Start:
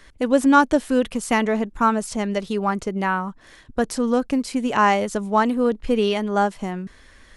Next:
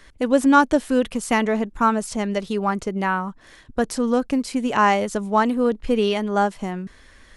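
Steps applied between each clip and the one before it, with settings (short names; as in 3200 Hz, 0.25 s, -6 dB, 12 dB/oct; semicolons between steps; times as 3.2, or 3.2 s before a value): nothing audible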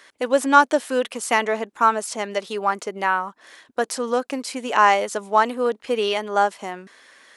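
HPF 470 Hz 12 dB/oct; gain +2.5 dB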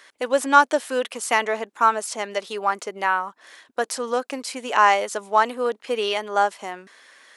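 low shelf 220 Hz -11.5 dB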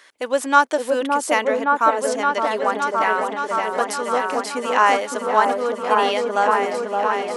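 repeats that get brighter 0.567 s, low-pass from 750 Hz, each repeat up 1 oct, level 0 dB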